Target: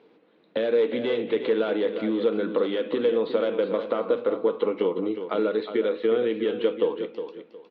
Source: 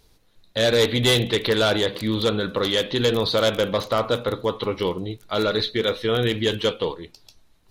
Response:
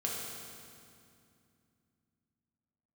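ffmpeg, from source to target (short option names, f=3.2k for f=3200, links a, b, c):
-af "acompressor=threshold=-31dB:ratio=6,highpass=f=200:w=0.5412,highpass=f=200:w=1.3066,equalizer=f=210:t=q:w=4:g=3,equalizer=f=310:t=q:w=4:g=7,equalizer=f=470:t=q:w=4:g=9,equalizer=f=1.8k:t=q:w=4:g=-3,lowpass=f=2.7k:w=0.5412,lowpass=f=2.7k:w=1.3066,aecho=1:1:362|724|1086:0.335|0.0804|0.0193,volume=4dB"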